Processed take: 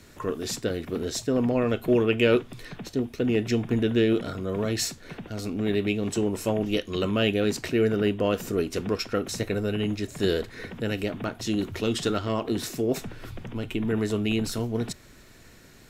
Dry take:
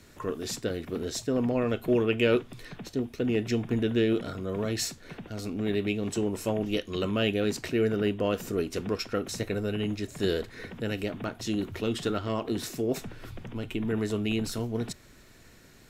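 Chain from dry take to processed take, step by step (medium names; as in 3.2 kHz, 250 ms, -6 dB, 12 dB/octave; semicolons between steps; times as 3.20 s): 11.56–12.25 s: dynamic bell 6.2 kHz, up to +5 dB, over -53 dBFS, Q 0.85; trim +3 dB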